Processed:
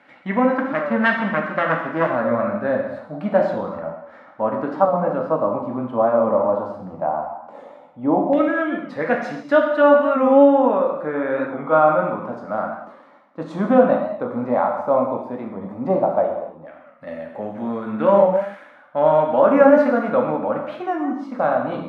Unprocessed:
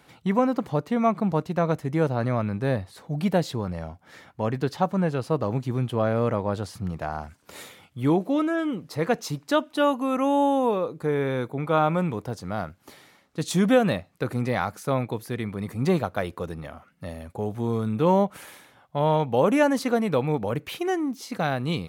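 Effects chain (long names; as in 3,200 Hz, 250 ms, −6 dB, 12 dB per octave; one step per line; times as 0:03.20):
0:00.54–0:02.14: phase distortion by the signal itself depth 0.56 ms
spectral tilt +4.5 dB per octave
0:16.29–0:17.07: downward compressor 5 to 1, threshold −44 dBFS, peak gain reduction 12 dB
hollow resonant body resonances 240/570 Hz, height 17 dB, ringing for 25 ms
auto-filter low-pass saw down 0.12 Hz 820–1,900 Hz
reverb whose tail is shaped and stops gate 320 ms falling, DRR 0 dB
wow of a warped record 45 rpm, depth 100 cents
level −6 dB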